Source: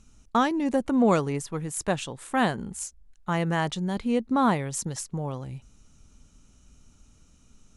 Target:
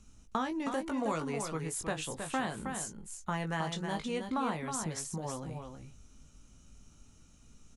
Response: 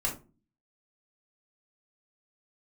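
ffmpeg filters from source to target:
-filter_complex "[0:a]asplit=2[link_01][link_02];[link_02]adelay=19,volume=-6dB[link_03];[link_01][link_03]amix=inputs=2:normalize=0,acrossover=split=420|850[link_04][link_05][link_06];[link_04]acompressor=threshold=-35dB:ratio=4[link_07];[link_05]acompressor=threshold=-39dB:ratio=4[link_08];[link_06]acompressor=threshold=-33dB:ratio=4[link_09];[link_07][link_08][link_09]amix=inputs=3:normalize=0,aecho=1:1:317:0.473,volume=-3dB"

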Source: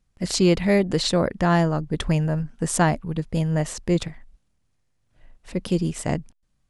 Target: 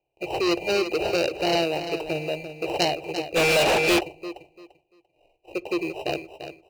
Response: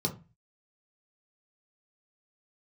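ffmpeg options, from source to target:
-filter_complex "[0:a]lowshelf=frequency=150:width_type=q:width=1.5:gain=-8.5,acrusher=samples=20:mix=1:aa=0.000001,firequalizer=gain_entry='entry(140,0);entry(210,-20);entry(340,13);entry(820,12);entry(1400,-29);entry(2400,7);entry(3500,-16);entry(5200,-27);entry(11000,-30)':delay=0.05:min_phase=1,asoftclip=type=tanh:threshold=-10.5dB,highpass=frequency=71:poles=1,aexciter=amount=14.1:drive=3.7:freq=2600,asuperstop=centerf=3400:order=8:qfactor=4.3,aecho=1:1:343|686|1029:0.316|0.0727|0.0167,asplit=2[link_01][link_02];[1:a]atrim=start_sample=2205,asetrate=25578,aresample=44100[link_03];[link_02][link_03]afir=irnorm=-1:irlink=0,volume=-24.5dB[link_04];[link_01][link_04]amix=inputs=2:normalize=0,asplit=3[link_05][link_06][link_07];[link_05]afade=type=out:start_time=3.35:duration=0.02[link_08];[link_06]asplit=2[link_09][link_10];[link_10]highpass=frequency=720:poles=1,volume=36dB,asoftclip=type=tanh:threshold=-5dB[link_11];[link_09][link_11]amix=inputs=2:normalize=0,lowpass=frequency=7100:poles=1,volume=-6dB,afade=type=in:start_time=3.35:duration=0.02,afade=type=out:start_time=3.99:duration=0.02[link_12];[link_07]afade=type=in:start_time=3.99:duration=0.02[link_13];[link_08][link_12][link_13]amix=inputs=3:normalize=0,volume=-8dB"

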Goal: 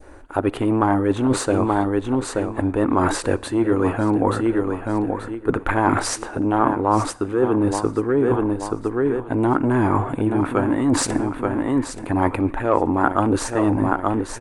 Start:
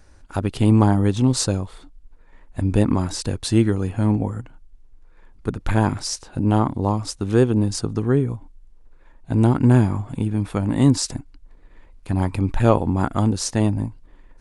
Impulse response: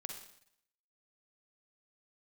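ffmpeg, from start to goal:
-filter_complex "[0:a]bandreject=frequency=5300:width=21,aecho=1:1:880|1760|2640:0.237|0.064|0.0173,acontrast=79,firequalizer=gain_entry='entry(200,0);entry(300,13);entry(5100,-6);entry(8700,2)':delay=0.05:min_phase=1,areverse,acompressor=threshold=-13dB:ratio=10,areverse,adynamicequalizer=threshold=0.0178:dfrequency=1500:dqfactor=0.79:tfrequency=1500:tqfactor=0.79:attack=5:release=100:ratio=0.375:range=3.5:mode=boostabove:tftype=bell,asplit=2[link_01][link_02];[1:a]atrim=start_sample=2205[link_03];[link_02][link_03]afir=irnorm=-1:irlink=0,volume=-13.5dB[link_04];[link_01][link_04]amix=inputs=2:normalize=0,volume=-4.5dB"

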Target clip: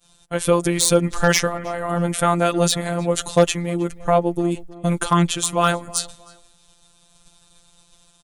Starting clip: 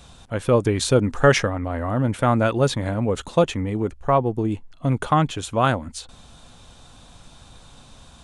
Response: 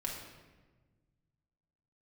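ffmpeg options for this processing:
-filter_complex "[0:a]aemphasis=mode=production:type=75fm,agate=range=-33dB:threshold=-33dB:ratio=3:detection=peak,highshelf=frequency=6400:gain=-2,asplit=2[link_01][link_02];[link_02]alimiter=limit=-11dB:level=0:latency=1:release=167,volume=1dB[link_03];[link_01][link_03]amix=inputs=2:normalize=0,afftfilt=real='hypot(re,im)*cos(PI*b)':imag='0':win_size=1024:overlap=0.75,asoftclip=type=hard:threshold=-2.5dB,asplit=2[link_04][link_05];[link_05]adelay=315,lowpass=frequency=2900:poles=1,volume=-20dB,asplit=2[link_06][link_07];[link_07]adelay=315,lowpass=frequency=2900:poles=1,volume=0.31[link_08];[link_06][link_08]amix=inputs=2:normalize=0[link_09];[link_04][link_09]amix=inputs=2:normalize=0"

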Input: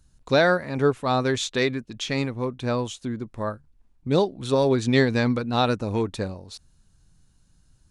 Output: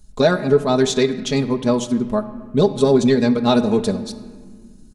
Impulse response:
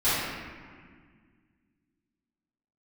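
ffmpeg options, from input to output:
-filter_complex "[0:a]atempo=1.6,equalizer=frequency=1800:width=0.69:gain=-8,acontrast=57,alimiter=limit=-9.5dB:level=0:latency=1:release=481,aecho=1:1:4.8:0.72,asplit=2[link_01][link_02];[1:a]atrim=start_sample=2205[link_03];[link_02][link_03]afir=irnorm=-1:irlink=0,volume=-26dB[link_04];[link_01][link_04]amix=inputs=2:normalize=0,volume=2dB"

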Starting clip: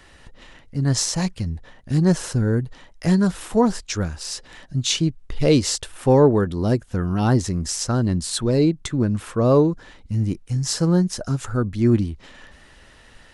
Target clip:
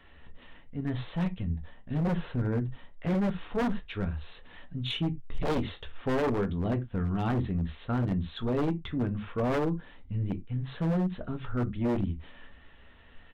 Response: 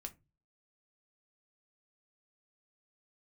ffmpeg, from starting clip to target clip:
-filter_complex "[0:a]aresample=8000,aresample=44100,aeval=exprs='(tanh(3.98*val(0)+0.15)-tanh(0.15))/3.98':channel_layout=same[link_01];[1:a]atrim=start_sample=2205,atrim=end_sample=4410[link_02];[link_01][link_02]afir=irnorm=-1:irlink=0,aeval=exprs='0.112*(abs(mod(val(0)/0.112+3,4)-2)-1)':channel_layout=same,volume=-3dB"

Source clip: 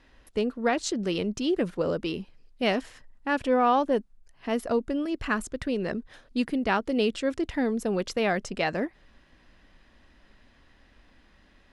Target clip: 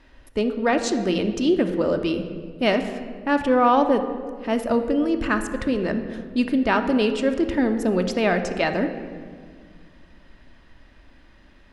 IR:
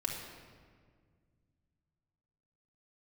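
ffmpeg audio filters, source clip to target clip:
-filter_complex "[0:a]asplit=2[link_01][link_02];[1:a]atrim=start_sample=2205,highshelf=frequency=4500:gain=-10[link_03];[link_02][link_03]afir=irnorm=-1:irlink=0,volume=-2dB[link_04];[link_01][link_04]amix=inputs=2:normalize=0"

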